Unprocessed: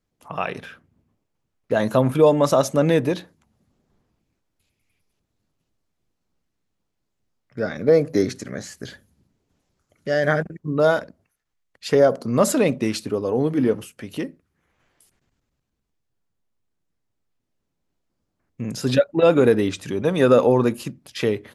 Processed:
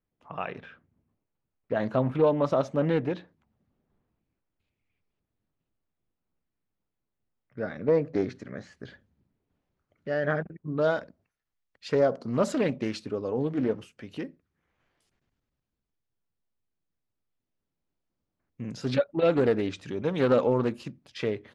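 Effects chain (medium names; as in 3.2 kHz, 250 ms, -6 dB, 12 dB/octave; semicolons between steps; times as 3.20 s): low-pass 2.9 kHz 12 dB/octave, from 10.67 s 5.2 kHz; loudspeaker Doppler distortion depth 0.22 ms; trim -7.5 dB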